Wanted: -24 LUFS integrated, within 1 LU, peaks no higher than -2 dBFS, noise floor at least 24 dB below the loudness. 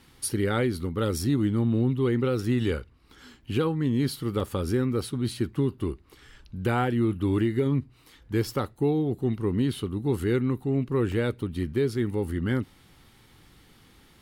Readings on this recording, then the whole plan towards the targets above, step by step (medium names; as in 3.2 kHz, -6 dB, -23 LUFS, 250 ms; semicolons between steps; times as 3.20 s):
dropouts 2; longest dropout 2.4 ms; loudness -27.0 LUFS; peak level -15.5 dBFS; loudness target -24.0 LUFS
-> interpolate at 4.40/11.12 s, 2.4 ms; trim +3 dB